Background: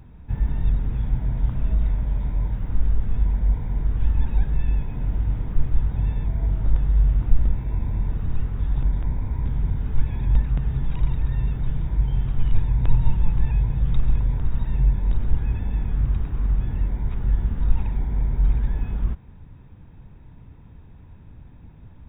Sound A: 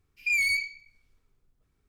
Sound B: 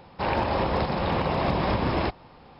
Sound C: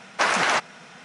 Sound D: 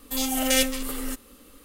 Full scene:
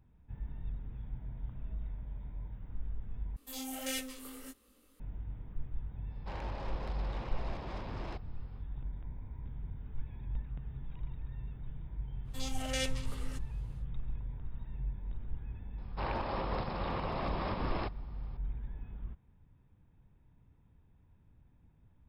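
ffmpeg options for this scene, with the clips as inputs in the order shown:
ffmpeg -i bed.wav -i cue0.wav -i cue1.wav -i cue2.wav -i cue3.wav -filter_complex "[4:a]asplit=2[link_01][link_02];[2:a]asplit=2[link_03][link_04];[0:a]volume=-19dB[link_05];[link_01]flanger=delay=18:depth=4.9:speed=1.6[link_06];[link_03]asoftclip=type=tanh:threshold=-24.5dB[link_07];[link_02]highpass=280,lowpass=6500[link_08];[link_04]equalizer=frequency=1200:width_type=o:width=0.35:gain=5[link_09];[link_05]asplit=2[link_10][link_11];[link_10]atrim=end=3.364[link_12];[link_06]atrim=end=1.64,asetpts=PTS-STARTPTS,volume=-12.5dB[link_13];[link_11]atrim=start=4.996[link_14];[link_07]atrim=end=2.59,asetpts=PTS-STARTPTS,volume=-15dB,afade=type=in:duration=0.1,afade=type=out:start_time=2.49:duration=0.1,adelay=6070[link_15];[link_08]atrim=end=1.64,asetpts=PTS-STARTPTS,volume=-12dB,afade=type=in:duration=0.1,afade=type=out:start_time=1.54:duration=0.1,adelay=12230[link_16];[link_09]atrim=end=2.59,asetpts=PTS-STARTPTS,volume=-12dB,afade=type=in:duration=0.004:curve=hsin,afade=type=out:start_time=2.586:duration=0.004:curve=hsin,adelay=15780[link_17];[link_12][link_13]acrossfade=duration=0.004:curve1=hsin:curve2=hsin[link_18];[link_18][link_14]acrossfade=duration=0.004:curve1=hsin:curve2=hsin[link_19];[link_19][link_15][link_16][link_17]amix=inputs=4:normalize=0" out.wav

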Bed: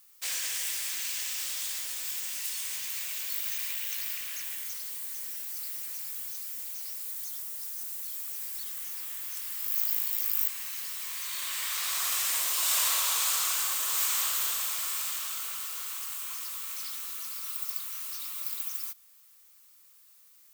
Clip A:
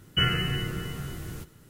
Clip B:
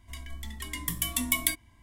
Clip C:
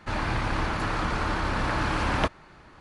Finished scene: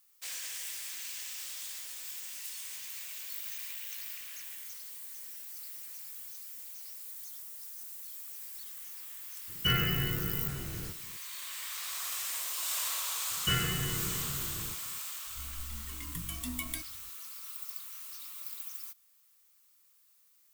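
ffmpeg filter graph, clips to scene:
ffmpeg -i bed.wav -i cue0.wav -i cue1.wav -filter_complex "[1:a]asplit=2[link_01][link_02];[0:a]volume=-7.5dB[link_03];[link_01]asoftclip=type=tanh:threshold=-15.5dB[link_04];[2:a]lowshelf=frequency=320:gain=9[link_05];[link_04]atrim=end=1.69,asetpts=PTS-STARTPTS,volume=-3dB,afade=type=in:duration=0.004:curve=hsin,afade=type=out:start_time=1.686:duration=0.004:curve=hsin,adelay=9480[link_06];[link_02]atrim=end=1.69,asetpts=PTS-STARTPTS,volume=-6dB,afade=type=in:duration=0.004:curve=hsin,afade=type=out:start_time=1.686:duration=0.004:curve=hsin,adelay=13300[link_07];[link_05]atrim=end=1.82,asetpts=PTS-STARTPTS,volume=-12dB,afade=type=in:duration=0.004:curve=hsin,afade=type=out:start_time=1.816:duration=0.004:curve=hsin,adelay=15270[link_08];[link_03][link_06][link_07][link_08]amix=inputs=4:normalize=0" out.wav

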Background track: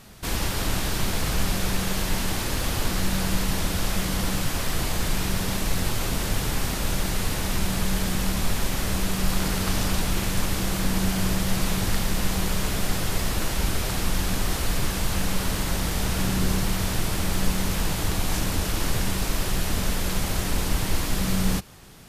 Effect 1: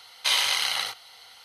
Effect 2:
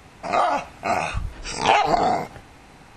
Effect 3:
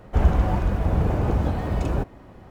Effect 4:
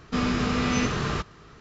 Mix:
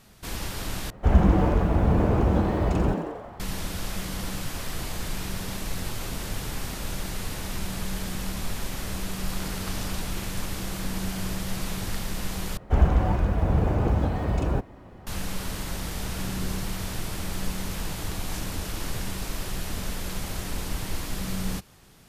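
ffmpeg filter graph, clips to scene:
ffmpeg -i bed.wav -i cue0.wav -i cue1.wav -i cue2.wav -filter_complex "[3:a]asplit=2[link_01][link_02];[0:a]volume=-6.5dB[link_03];[link_01]asplit=9[link_04][link_05][link_06][link_07][link_08][link_09][link_10][link_11][link_12];[link_05]adelay=89,afreqshift=130,volume=-7.5dB[link_13];[link_06]adelay=178,afreqshift=260,volume=-12.1dB[link_14];[link_07]adelay=267,afreqshift=390,volume=-16.7dB[link_15];[link_08]adelay=356,afreqshift=520,volume=-21.2dB[link_16];[link_09]adelay=445,afreqshift=650,volume=-25.8dB[link_17];[link_10]adelay=534,afreqshift=780,volume=-30.4dB[link_18];[link_11]adelay=623,afreqshift=910,volume=-35dB[link_19];[link_12]adelay=712,afreqshift=1040,volume=-39.6dB[link_20];[link_04][link_13][link_14][link_15][link_16][link_17][link_18][link_19][link_20]amix=inputs=9:normalize=0[link_21];[link_03]asplit=3[link_22][link_23][link_24];[link_22]atrim=end=0.904[link_25];[link_21]atrim=end=2.5,asetpts=PTS-STARTPTS,volume=-0.5dB[link_26];[link_23]atrim=start=3.396:end=12.574[link_27];[link_02]atrim=end=2.5,asetpts=PTS-STARTPTS,volume=-1dB[link_28];[link_24]atrim=start=15.066[link_29];[link_25][link_26]acrossfade=duration=0.004:curve1=hsin:curve2=hsin[link_30];[link_30][link_27]acrossfade=duration=0.004:curve1=hsin:curve2=hsin[link_31];[link_31][link_28]acrossfade=duration=0.004:curve1=hsin:curve2=hsin[link_32];[link_32][link_29]acrossfade=duration=0.004:curve1=hsin:curve2=hsin" out.wav

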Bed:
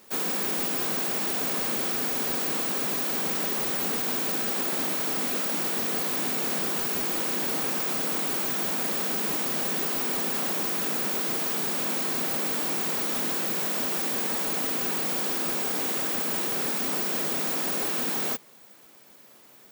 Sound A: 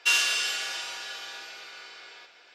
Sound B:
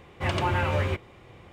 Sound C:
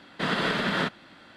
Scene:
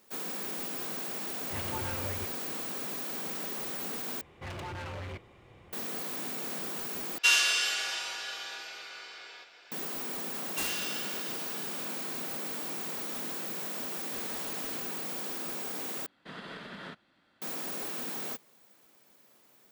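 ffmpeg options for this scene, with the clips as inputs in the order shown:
ffmpeg -i bed.wav -i cue0.wav -i cue1.wav -i cue2.wav -filter_complex "[2:a]asplit=2[link_01][link_02];[1:a]asplit=2[link_03][link_04];[3:a]asplit=2[link_05][link_06];[0:a]volume=-9dB[link_07];[link_02]asoftclip=type=tanh:threshold=-31.5dB[link_08];[link_04]aeval=exprs='(mod(6.68*val(0)+1,2)-1)/6.68':channel_layout=same[link_09];[link_05]aeval=exprs='(mod(16.8*val(0)+1,2)-1)/16.8':channel_layout=same[link_10];[link_07]asplit=4[link_11][link_12][link_13][link_14];[link_11]atrim=end=4.214[link_15];[link_08]atrim=end=1.52,asetpts=PTS-STARTPTS,volume=-6dB[link_16];[link_12]atrim=start=5.726:end=7.184[link_17];[link_03]atrim=end=2.54,asetpts=PTS-STARTPTS,volume=-0.5dB[link_18];[link_13]atrim=start=9.716:end=16.064[link_19];[link_06]atrim=end=1.36,asetpts=PTS-STARTPTS,volume=-17.5dB[link_20];[link_14]atrim=start=17.416[link_21];[link_01]atrim=end=1.52,asetpts=PTS-STARTPTS,volume=-13dB,afade=type=in:duration=0.004:curve=hsin,afade=type=out:start_time=1.516:duration=0.004:curve=hsin,adelay=1300[link_22];[link_09]atrim=end=2.54,asetpts=PTS-STARTPTS,volume=-11dB,afade=type=in:duration=0.004:curve=hsin,afade=type=out:start_time=2.536:duration=0.004:curve=hsin,adelay=10510[link_23];[link_10]atrim=end=1.36,asetpts=PTS-STARTPTS,volume=-18dB,afade=type=in:duration=0.004:curve=hsin,afade=type=out:start_time=1.356:duration=0.004:curve=hsin,adelay=13920[link_24];[link_15][link_16]acrossfade=duration=0.004:curve1=hsin:curve2=hsin[link_25];[link_25][link_17]acrossfade=duration=0.004:curve1=hsin:curve2=hsin[link_26];[link_26][link_18]acrossfade=duration=0.004:curve1=hsin:curve2=hsin[link_27];[link_27][link_19]acrossfade=duration=0.004:curve1=hsin:curve2=hsin[link_28];[link_28][link_20]acrossfade=duration=0.004:curve1=hsin:curve2=hsin[link_29];[link_29][link_21]acrossfade=duration=0.004:curve1=hsin:curve2=hsin[link_30];[link_30][link_22][link_23][link_24]amix=inputs=4:normalize=0" out.wav

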